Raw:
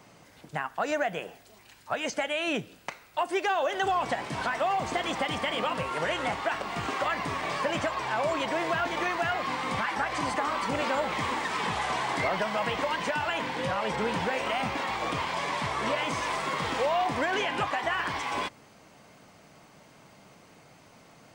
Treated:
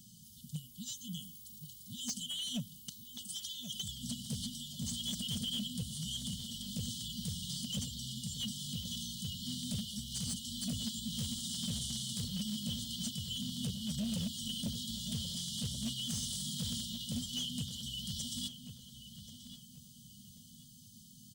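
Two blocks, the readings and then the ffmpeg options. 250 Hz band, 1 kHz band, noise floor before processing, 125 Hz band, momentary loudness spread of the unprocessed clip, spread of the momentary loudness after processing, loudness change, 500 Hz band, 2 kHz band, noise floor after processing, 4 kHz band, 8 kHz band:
−4.0 dB, −40.0 dB, −56 dBFS, −0.5 dB, 4 LU, 14 LU, −9.0 dB, −31.5 dB, −33.5 dB, −57 dBFS, −1.0 dB, +4.5 dB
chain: -filter_complex "[0:a]afftfilt=real='re*(1-between(b*sr/4096,250,2900))':imag='im*(1-between(b*sr/4096,250,2900))':win_size=4096:overlap=0.75,firequalizer=gain_entry='entry(140,0);entry(790,9);entry(3300,-1);entry(12000,12)':delay=0.05:min_phase=1,asoftclip=type=hard:threshold=-32.5dB,asplit=2[link_01][link_02];[link_02]adelay=1083,lowpass=frequency=3700:poles=1,volume=-10.5dB,asplit=2[link_03][link_04];[link_04]adelay=1083,lowpass=frequency=3700:poles=1,volume=0.36,asplit=2[link_05][link_06];[link_06]adelay=1083,lowpass=frequency=3700:poles=1,volume=0.36,asplit=2[link_07][link_08];[link_08]adelay=1083,lowpass=frequency=3700:poles=1,volume=0.36[link_09];[link_01][link_03][link_05][link_07][link_09]amix=inputs=5:normalize=0"

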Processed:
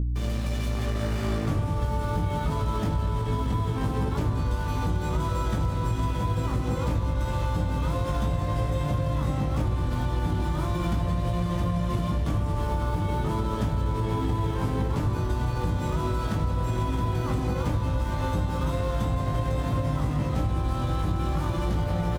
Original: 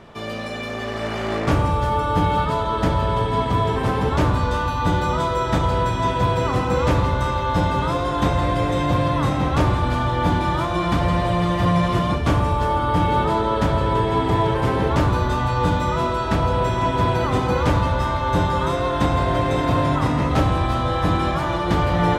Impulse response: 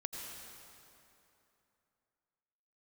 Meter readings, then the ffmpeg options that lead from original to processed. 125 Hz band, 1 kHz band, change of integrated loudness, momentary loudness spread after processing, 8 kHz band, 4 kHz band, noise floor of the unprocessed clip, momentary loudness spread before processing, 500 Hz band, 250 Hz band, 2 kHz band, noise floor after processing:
−4.0 dB, −12.0 dB, −7.0 dB, 1 LU, −5.0 dB, −10.5 dB, −26 dBFS, 2 LU, −10.5 dB, −7.0 dB, −12.0 dB, −29 dBFS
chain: -filter_complex "[0:a]asplit=2[link_01][link_02];[link_02]aecho=0:1:980:0.211[link_03];[link_01][link_03]amix=inputs=2:normalize=0,aeval=exprs='sgn(val(0))*max(abs(val(0))-0.0211,0)':channel_layout=same,alimiter=limit=-14.5dB:level=0:latency=1:release=82,aeval=exprs='val(0)+0.0224*(sin(2*PI*60*n/s)+sin(2*PI*2*60*n/s)/2+sin(2*PI*3*60*n/s)/3+sin(2*PI*4*60*n/s)/4+sin(2*PI*5*60*n/s)/5)':channel_layout=same,lowshelf=frequency=390:gain=11.5,asplit=2[link_04][link_05];[link_05]adelay=19,volume=-4dB[link_06];[link_04][link_06]amix=inputs=2:normalize=0,acompressor=threshold=-28dB:ratio=4,highshelf=frequency=6400:gain=11.5,volume=2dB"

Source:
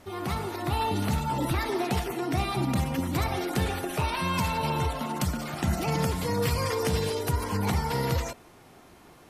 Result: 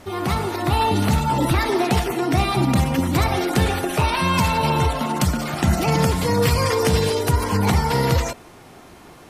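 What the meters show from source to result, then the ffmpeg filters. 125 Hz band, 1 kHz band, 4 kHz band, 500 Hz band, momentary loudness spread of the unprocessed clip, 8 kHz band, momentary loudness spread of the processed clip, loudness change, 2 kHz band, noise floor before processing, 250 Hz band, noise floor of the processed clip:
+8.5 dB, +8.5 dB, +8.5 dB, +8.5 dB, 3 LU, +8.0 dB, 3 LU, +8.5 dB, +8.5 dB, −53 dBFS, +8.5 dB, −45 dBFS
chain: -af "equalizer=frequency=12000:width=3.7:gain=-4,volume=8.5dB"

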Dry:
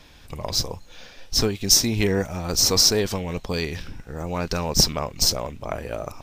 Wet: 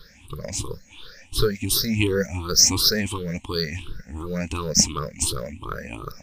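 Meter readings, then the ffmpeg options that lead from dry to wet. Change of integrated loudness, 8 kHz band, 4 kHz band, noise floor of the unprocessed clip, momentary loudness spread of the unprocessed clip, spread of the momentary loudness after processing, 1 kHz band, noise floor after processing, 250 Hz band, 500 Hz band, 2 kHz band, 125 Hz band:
−0.5 dB, 0.0 dB, −2.0 dB, −48 dBFS, 17 LU, 20 LU, −2.5 dB, −51 dBFS, 0.0 dB, −1.5 dB, +1.0 dB, −0.5 dB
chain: -af "afftfilt=real='re*pow(10,23/40*sin(2*PI*(0.61*log(max(b,1)*sr/1024/100)/log(2)-(2.8)*(pts-256)/sr)))':imag='im*pow(10,23/40*sin(2*PI*(0.61*log(max(b,1)*sr/1024/100)/log(2)-(2.8)*(pts-256)/sr)))':win_size=1024:overlap=0.75,equalizer=frequency=700:width=2.4:gain=-12.5,volume=-4.5dB"

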